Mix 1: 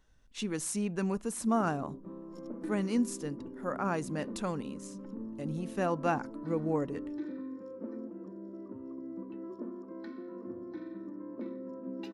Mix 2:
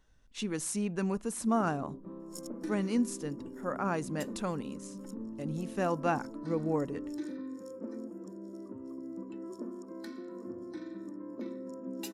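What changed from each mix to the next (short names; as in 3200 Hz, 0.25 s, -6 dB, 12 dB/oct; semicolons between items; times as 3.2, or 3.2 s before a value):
second sound: remove air absorption 280 m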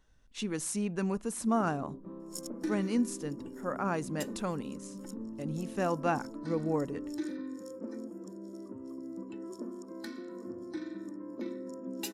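second sound +4.5 dB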